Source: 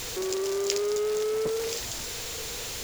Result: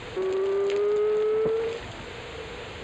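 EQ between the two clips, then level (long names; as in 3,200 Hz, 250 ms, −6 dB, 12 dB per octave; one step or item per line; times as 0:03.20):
moving average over 8 samples
high-pass filter 58 Hz
high-frequency loss of the air 99 metres
+4.0 dB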